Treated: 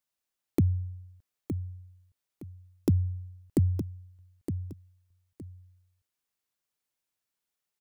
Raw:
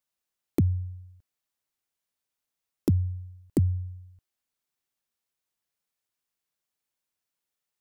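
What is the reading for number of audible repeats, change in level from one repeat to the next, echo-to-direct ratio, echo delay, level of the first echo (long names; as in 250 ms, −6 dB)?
2, −11.5 dB, −8.5 dB, 915 ms, −9.0 dB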